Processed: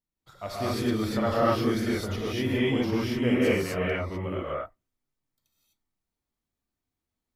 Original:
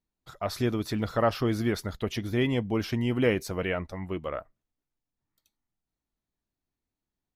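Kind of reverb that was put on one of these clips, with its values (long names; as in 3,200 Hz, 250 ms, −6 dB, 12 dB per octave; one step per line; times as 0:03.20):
reverb whose tail is shaped and stops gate 280 ms rising, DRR −8 dB
level −6.5 dB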